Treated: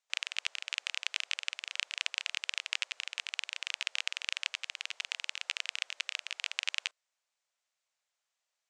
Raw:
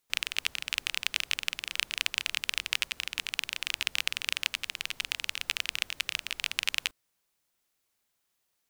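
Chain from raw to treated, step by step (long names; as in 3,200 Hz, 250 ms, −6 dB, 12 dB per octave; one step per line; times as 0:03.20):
elliptic band-pass filter 570–7,500 Hz, stop band 60 dB
level −4 dB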